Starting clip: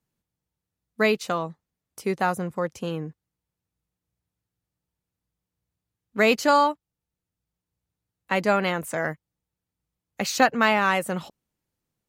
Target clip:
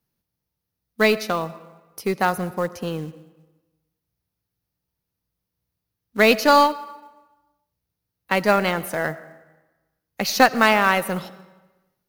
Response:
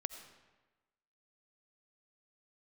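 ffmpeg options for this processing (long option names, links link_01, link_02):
-filter_complex "[0:a]asplit=2[link_01][link_02];[1:a]atrim=start_sample=2205[link_03];[link_02][link_03]afir=irnorm=-1:irlink=0,volume=0dB[link_04];[link_01][link_04]amix=inputs=2:normalize=0,aexciter=amount=1.2:drive=3.6:freq=4300,aeval=exprs='1.06*(cos(1*acos(clip(val(0)/1.06,-1,1)))-cos(1*PI/2))+0.0106*(cos(5*acos(clip(val(0)/1.06,-1,1)))-cos(5*PI/2))+0.0422*(cos(7*acos(clip(val(0)/1.06,-1,1)))-cos(7*PI/2))+0.0168*(cos(8*acos(clip(val(0)/1.06,-1,1)))-cos(8*PI/2))':channel_layout=same,acrusher=bits=6:mode=log:mix=0:aa=0.000001,volume=-1dB"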